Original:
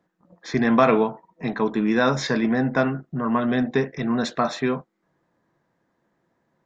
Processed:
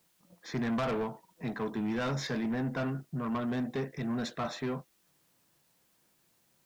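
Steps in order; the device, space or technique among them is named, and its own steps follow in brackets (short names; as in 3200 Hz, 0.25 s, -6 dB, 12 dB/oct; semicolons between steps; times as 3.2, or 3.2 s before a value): open-reel tape (soft clip -20 dBFS, distortion -9 dB; bell 120 Hz +4.5 dB 1.12 oct; white noise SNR 36 dB); gain -8.5 dB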